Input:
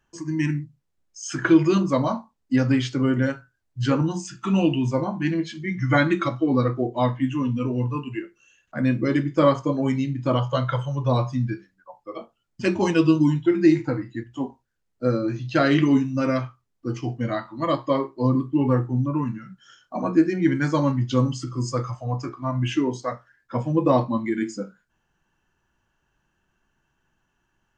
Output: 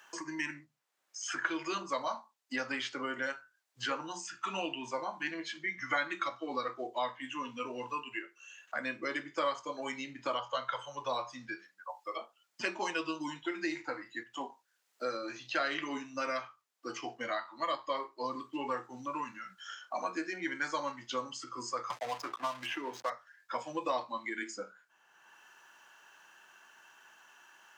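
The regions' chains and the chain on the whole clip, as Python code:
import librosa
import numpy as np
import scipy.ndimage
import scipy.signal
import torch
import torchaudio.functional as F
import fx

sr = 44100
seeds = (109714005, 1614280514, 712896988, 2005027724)

y = fx.chain(x, sr, fx.ellip_bandpass(low_hz=110.0, high_hz=6300.0, order=3, stop_db=40),
    fx.backlash(play_db=-37.0),
    fx.band_squash(depth_pct=100), at=(21.9, 23.1))
y = scipy.signal.sosfilt(scipy.signal.butter(2, 810.0, 'highpass', fs=sr, output='sos'), y)
y = fx.band_squash(y, sr, depth_pct=70)
y = F.gain(torch.from_numpy(y), -4.5).numpy()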